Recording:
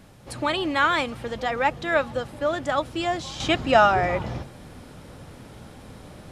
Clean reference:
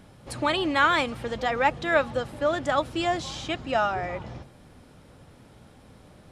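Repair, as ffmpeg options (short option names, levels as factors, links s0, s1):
-af "agate=range=0.0891:threshold=0.0141,asetnsamples=n=441:p=0,asendcmd='3.4 volume volume -8dB',volume=1"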